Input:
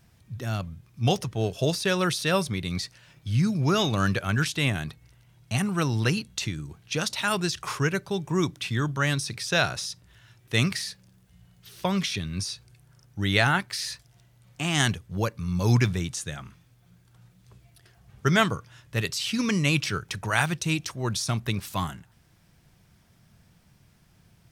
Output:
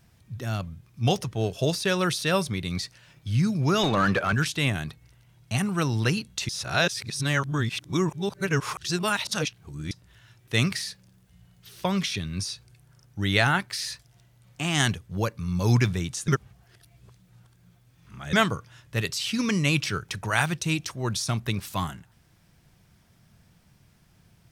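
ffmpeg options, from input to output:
-filter_complex "[0:a]asettb=1/sr,asplit=3[a][b][c];[a]atrim=end=3.834[d];[b]atrim=start=3.83:end=4.33,asetpts=PTS-STARTPTS,afade=t=in:d=0.004:c=qsin,afade=t=out:st=0.496:d=0.004:c=qsin,asplit=2[e][f];[f]highpass=f=720:p=1,volume=21dB,asoftclip=type=tanh:threshold=-11dB[g];[e][g]amix=inputs=2:normalize=0,lowpass=f=1.1k:p=1,volume=-6dB[h];[c]atrim=start=4.326[i];[d][h]acrossfade=d=0.004:c1=hsin:c2=qsin[j];[j][i]acrossfade=d=0.004:c1=qsin:c2=hsin,asplit=5[k][l][m][n][o];[k]atrim=end=6.492[p];[l]atrim=start=6.488:end=9.912,asetpts=PTS-STARTPTS,areverse[q];[m]atrim=start=9.908:end=16.282[r];[n]atrim=start=16.278:end=18.332,asetpts=PTS-STARTPTS,areverse[s];[o]atrim=start=18.328[t];[p][q]acrossfade=d=0.004:c1=hsin:c2=hsin[u];[u][r]acrossfade=d=0.004:c1=hsin:c2=hsin[v];[v][s]acrossfade=d=0.004:c1=hsin:c2=hsin[w];[w][t]acrossfade=d=0.004:c1=hsin:c2=hsin"

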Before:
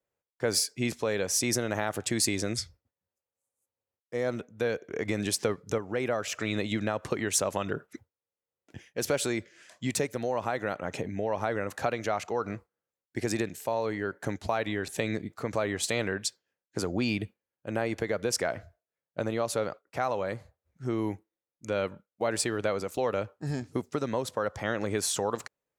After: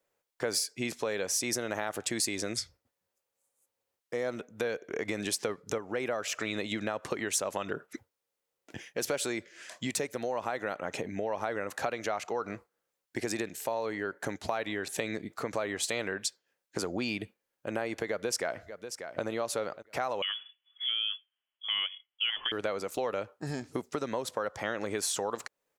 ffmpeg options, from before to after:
-filter_complex "[0:a]asplit=2[a][b];[b]afade=t=in:st=18.07:d=0.01,afade=t=out:st=19.23:d=0.01,aecho=0:1:590|1180|1770:0.133352|0.0400056|0.0120017[c];[a][c]amix=inputs=2:normalize=0,asettb=1/sr,asplit=3[d][e][f];[d]atrim=end=20.224[g];[e]atrim=start=20.22:end=22.52,asetpts=PTS-STARTPTS,afade=t=in:d=0.004:c=qsin,afade=t=out:st=2.296:d=0.004:c=qsin,lowpass=f=3k:t=q:w=0.5098,lowpass=f=3k:t=q:w=0.6013,lowpass=f=3k:t=q:w=0.9,lowpass=f=3k:t=q:w=2.563,afreqshift=-3500[h];[f]atrim=start=22.516[i];[g][h]acrossfade=d=0.004:c1=hsin:c2=qsin[j];[j][i]acrossfade=d=0.004:c1=qsin:c2=hsin,equalizer=f=74:t=o:w=2.9:g=-10.5,acompressor=threshold=-45dB:ratio=2,volume=8dB"

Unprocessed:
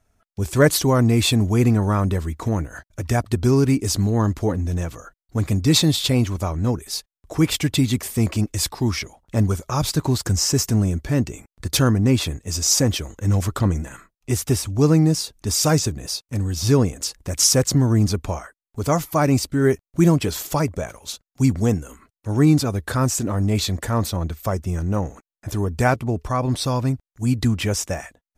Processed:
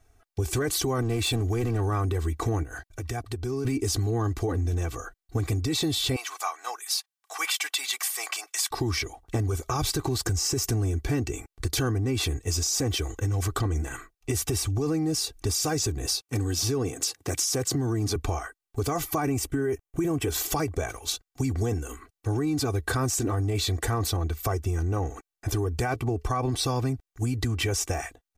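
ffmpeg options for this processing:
-filter_complex "[0:a]asettb=1/sr,asplit=3[a][b][c];[a]atrim=end=1.024[d];[b]atrim=start=1.02:end=1.88,asetpts=PTS-STARTPTS,afade=t=in:d=0.004:c=qsin,afade=t=out:st=0.856:d=0.004:c=qsin,volume=14dB,asoftclip=hard,volume=-14dB[e];[c]atrim=start=1.876[f];[d][e]acrossfade=d=0.004:c1=hsin:c2=qsin[g];[g][f]acrossfade=d=0.004:c1=qsin:c2=hsin,asettb=1/sr,asplit=3[h][i][j];[h]atrim=end=2.634[k];[i]atrim=start=2.63:end=3.65,asetpts=PTS-STARTPTS,afade=t=in:d=0.004:c=qsin,afade=t=out:st=1.016:d=0.004:c=qsin,acompressor=threshold=-38dB:ratio=2.5:attack=3.2:release=140:knee=1:detection=peak[l];[j]atrim=start=3.646[m];[k][l]acrossfade=d=0.004:c1=hsin:c2=qsin[n];[n][m]acrossfade=d=0.004:c1=qsin:c2=hsin,asettb=1/sr,asplit=3[o][p][q];[o]atrim=end=6.164[r];[p]atrim=start=6.16:end=8.71,asetpts=PTS-STARTPTS,afade=t=in:d=0.004:c=qsin,afade=t=out:st=2.546:d=0.004:c=qsin,highpass=f=850:w=0.5412,highpass=f=850:w=1.3066[s];[q]atrim=start=8.706[t];[r][s]acrossfade=d=0.004:c1=hsin:c2=qsin[u];[u][t]acrossfade=d=0.004:c1=qsin:c2=hsin,asettb=1/sr,asplit=3[v][w][x];[v]atrim=end=16.224[y];[w]atrim=start=16.22:end=18.16,asetpts=PTS-STARTPTS,afade=t=in:d=0.004:c=qsin,afade=t=out:st=1.936:d=0.004:c=qsin,highpass=f=110:w=0.5412,highpass=f=110:w=1.3066[z];[x]atrim=start=18.156[aa];[y][z]acrossfade=d=0.004:c1=hsin:c2=qsin[ab];[ab][aa]acrossfade=d=0.004:c1=qsin:c2=hsin,asettb=1/sr,asplit=3[ac][ad][ae];[ac]atrim=end=19.224[af];[ad]atrim=start=19.22:end=20.34,asetpts=PTS-STARTPTS,afade=t=in:d=0.004:c=qsin,afade=t=out:st=1.116:d=0.004:c=qsin,equalizer=f=4.4k:w=2.5:g=-12.5[ag];[ae]atrim=start=20.336[ah];[af][ag]acrossfade=d=0.004:c1=hsin:c2=qsin[ai];[ai][ah]acrossfade=d=0.004:c1=qsin:c2=hsin,aecho=1:1:2.6:0.77,alimiter=limit=-15dB:level=0:latency=1:release=16,acompressor=threshold=-25dB:ratio=6,volume=1.5dB"

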